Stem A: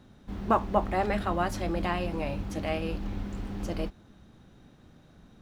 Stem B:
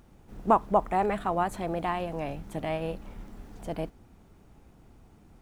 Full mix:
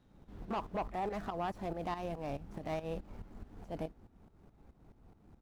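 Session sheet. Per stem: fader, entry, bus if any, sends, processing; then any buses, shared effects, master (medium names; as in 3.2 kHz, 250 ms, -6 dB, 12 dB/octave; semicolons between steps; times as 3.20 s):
-13.0 dB, 0.00 s, no send, one-sided wavefolder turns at -18 dBFS; auto duck -14 dB, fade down 1.40 s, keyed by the second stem
-1.5 dB, 27 ms, no send, median filter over 15 samples; tremolo saw up 4.7 Hz, depth 80%; saturation -23 dBFS, distortion -13 dB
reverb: none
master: peak limiter -29.5 dBFS, peak gain reduction 8 dB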